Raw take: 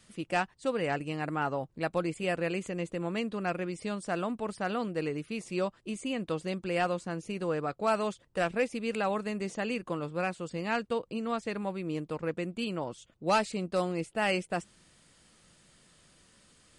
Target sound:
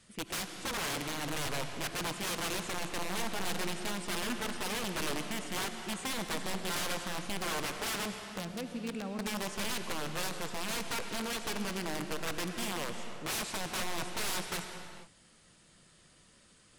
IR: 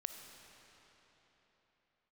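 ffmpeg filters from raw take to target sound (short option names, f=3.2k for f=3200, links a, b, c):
-filter_complex "[0:a]asettb=1/sr,asplit=3[a][b][c];[a]atrim=end=8.054[d];[b]atrim=start=8.05:end=9.19,asetpts=PTS-STARTPTS,afade=t=in:d=0.004:c=qsin,afade=t=out:st=1.136:d=0.004:c=qsin,acrossover=split=270[e][f];[f]acompressor=threshold=-42dB:ratio=6[g];[e][g]amix=inputs=2:normalize=0[h];[c]atrim=start=9.186[i];[d][h]acrossfade=d=0.004:c1=hsin:c2=qsin[j];[j][i]acrossfade=d=0.004:c1=qsin:c2=hsin,aeval=exprs='(mod(28.2*val(0)+1,2)-1)/28.2':c=same[k];[1:a]atrim=start_sample=2205,afade=t=out:st=0.31:d=0.01,atrim=end_sample=14112,asetrate=24255,aresample=44100[l];[k][l]afir=irnorm=-1:irlink=0,volume=-1dB"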